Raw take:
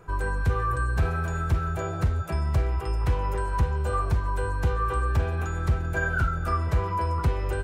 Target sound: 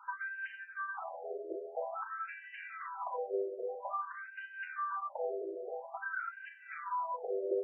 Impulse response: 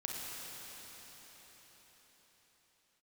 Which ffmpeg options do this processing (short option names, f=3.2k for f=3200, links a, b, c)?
-filter_complex "[0:a]bandreject=f=54.07:t=h:w=4,bandreject=f=108.14:t=h:w=4,bandreject=f=162.21:t=h:w=4,bandreject=f=216.28:t=h:w=4,bandreject=f=270.35:t=h:w=4,bandreject=f=324.42:t=h:w=4,bandreject=f=378.49:t=h:w=4,bandreject=f=432.56:t=h:w=4,bandreject=f=486.63:t=h:w=4,bandreject=f=540.7:t=h:w=4,bandreject=f=594.77:t=h:w=4,bandreject=f=648.84:t=h:w=4,acrossover=split=560[a][b];[b]acompressor=threshold=-38dB:ratio=16[c];[a][c]amix=inputs=2:normalize=0,afftfilt=real='re*between(b*sr/1024,480*pow(2200/480,0.5+0.5*sin(2*PI*0.5*pts/sr))/1.41,480*pow(2200/480,0.5+0.5*sin(2*PI*0.5*pts/sr))*1.41)':imag='im*between(b*sr/1024,480*pow(2200/480,0.5+0.5*sin(2*PI*0.5*pts/sr))/1.41,480*pow(2200/480,0.5+0.5*sin(2*PI*0.5*pts/sr))*1.41)':win_size=1024:overlap=0.75,volume=3dB"